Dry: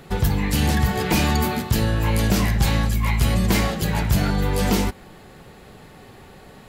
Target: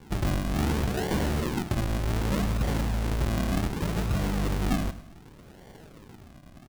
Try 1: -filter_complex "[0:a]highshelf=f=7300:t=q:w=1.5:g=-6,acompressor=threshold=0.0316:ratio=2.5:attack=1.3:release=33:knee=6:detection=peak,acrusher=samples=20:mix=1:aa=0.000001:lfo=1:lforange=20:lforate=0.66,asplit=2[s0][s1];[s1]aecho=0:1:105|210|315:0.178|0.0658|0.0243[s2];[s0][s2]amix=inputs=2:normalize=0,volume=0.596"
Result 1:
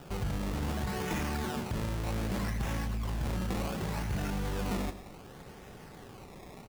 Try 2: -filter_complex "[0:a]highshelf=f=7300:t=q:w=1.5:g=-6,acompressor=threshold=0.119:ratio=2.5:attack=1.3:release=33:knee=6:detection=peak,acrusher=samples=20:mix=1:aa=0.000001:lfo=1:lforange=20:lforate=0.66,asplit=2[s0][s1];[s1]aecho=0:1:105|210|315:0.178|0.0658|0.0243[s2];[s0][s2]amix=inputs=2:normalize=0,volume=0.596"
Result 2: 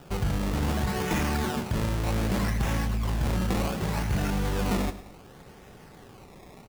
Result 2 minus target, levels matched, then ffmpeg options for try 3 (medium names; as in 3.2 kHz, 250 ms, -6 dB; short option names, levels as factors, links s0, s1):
decimation with a swept rate: distortion -6 dB
-filter_complex "[0:a]highshelf=f=7300:t=q:w=1.5:g=-6,acompressor=threshold=0.119:ratio=2.5:attack=1.3:release=33:knee=6:detection=peak,acrusher=samples=67:mix=1:aa=0.000001:lfo=1:lforange=67:lforate=0.66,asplit=2[s0][s1];[s1]aecho=0:1:105|210|315:0.178|0.0658|0.0243[s2];[s0][s2]amix=inputs=2:normalize=0,volume=0.596"